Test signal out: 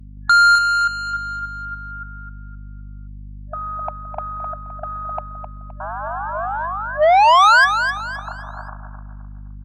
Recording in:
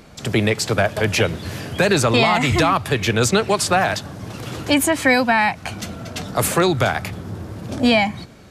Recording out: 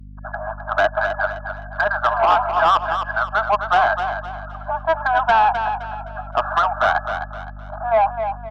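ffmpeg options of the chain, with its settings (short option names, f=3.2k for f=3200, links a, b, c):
-filter_complex "[0:a]aemphasis=mode=production:type=75kf,afftfilt=real='re*gte(hypot(re,im),0.0501)':imag='im*gte(hypot(re,im),0.0501)':win_size=1024:overlap=0.75,asplit=2[a][b];[b]acrusher=bits=3:mix=0:aa=0.000001,volume=-9dB[c];[a][c]amix=inputs=2:normalize=0,equalizer=f=1k:t=o:w=2.6:g=14.5,dynaudnorm=f=160:g=13:m=7dB,afftfilt=real='re*between(b*sr/4096,600,1700)':imag='im*between(b*sr/4096,600,1700)':win_size=4096:overlap=0.75,aeval=exprs='val(0)+0.0141*(sin(2*PI*50*n/s)+sin(2*PI*2*50*n/s)/2+sin(2*PI*3*50*n/s)/3+sin(2*PI*4*50*n/s)/4+sin(2*PI*5*50*n/s)/5)':c=same,asoftclip=type=tanh:threshold=-9.5dB,aecho=1:1:259|518|777|1036:0.398|0.143|0.0516|0.0186" -ar 48000 -c:a libopus -b:a 64k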